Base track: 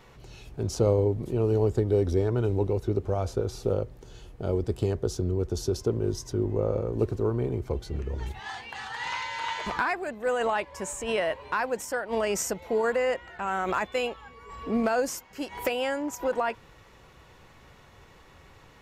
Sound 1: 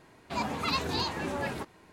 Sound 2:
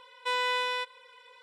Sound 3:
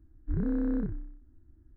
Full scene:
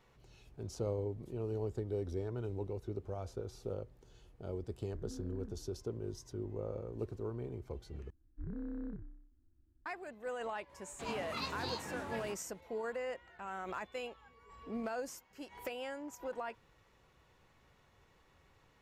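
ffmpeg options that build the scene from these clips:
-filter_complex "[3:a]asplit=2[s0][s1];[0:a]volume=0.2[s2];[1:a]asplit=2[s3][s4];[s4]adelay=22,volume=0.668[s5];[s3][s5]amix=inputs=2:normalize=0[s6];[s2]asplit=2[s7][s8];[s7]atrim=end=8.104[s9];[s1]atrim=end=1.76,asetpts=PTS-STARTPTS,volume=0.224[s10];[s8]atrim=start=9.856[s11];[s0]atrim=end=1.76,asetpts=PTS-STARTPTS,volume=0.126,afade=t=in:d=0.004:c=hsin,afade=t=out:st=1.756:d=0.004:c=hsin,adelay=205065S[s12];[s6]atrim=end=1.92,asetpts=PTS-STARTPTS,volume=0.266,afade=t=in:d=0.004:c=hsin,afade=t=out:st=1.916:d=0.004:c=hsin,adelay=10690[s13];[s9][s10]acrossfade=d=0.004:c1=hsin:c2=hsin[s14];[s14][s11]acrossfade=d=0.004:c1=hsin:c2=hsin[s15];[s15][s12][s13]amix=inputs=3:normalize=0"

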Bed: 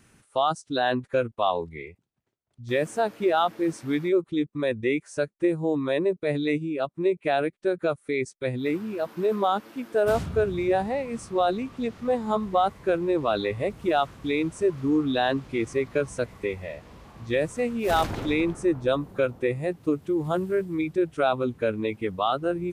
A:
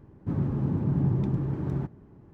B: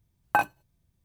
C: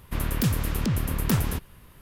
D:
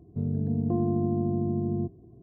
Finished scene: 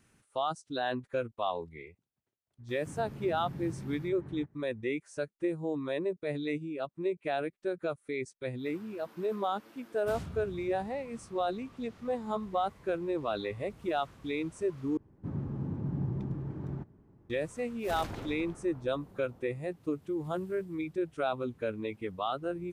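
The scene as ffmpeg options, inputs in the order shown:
-filter_complex "[1:a]asplit=2[s0][s1];[0:a]volume=0.376[s2];[s0]equalizer=f=1900:t=o:w=0.88:g=8.5[s3];[s2]asplit=2[s4][s5];[s4]atrim=end=14.974[s6];[s1]atrim=end=2.33,asetpts=PTS-STARTPTS,volume=0.376[s7];[s5]atrim=start=17.296[s8];[s3]atrim=end=2.33,asetpts=PTS-STARTPTS,volume=0.158,afade=t=in:d=0.004:c=hsin,afade=t=out:st=2.326:d=0.004:c=hsin,adelay=2590[s9];[s6][s7]acrossfade=d=0.004:c1=hsin:c2=hsin[s10];[s10][s8]acrossfade=d=0.004:c1=hsin:c2=hsin[s11];[s11][s9]amix=inputs=2:normalize=0"

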